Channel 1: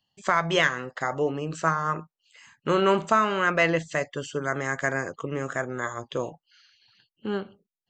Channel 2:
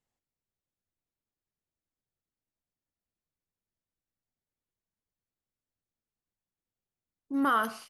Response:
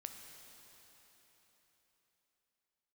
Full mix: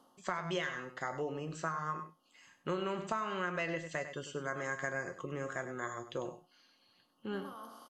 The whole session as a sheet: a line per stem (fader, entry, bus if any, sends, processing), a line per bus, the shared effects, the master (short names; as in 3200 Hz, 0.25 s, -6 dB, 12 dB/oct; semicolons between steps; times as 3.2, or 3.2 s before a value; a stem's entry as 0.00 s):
-1.5 dB, 0.00 s, no send, echo send -12 dB, dry
-5.5 dB, 0.00 s, no send, no echo send, per-bin compression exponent 0.4; band shelf 1900 Hz -12.5 dB 1.2 oct; auto duck -9 dB, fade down 0.25 s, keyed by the first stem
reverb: off
echo: echo 99 ms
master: resonator 180 Hz, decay 0.24 s, harmonics all, mix 70%; compressor 6:1, threshold -32 dBFS, peak gain reduction 8.5 dB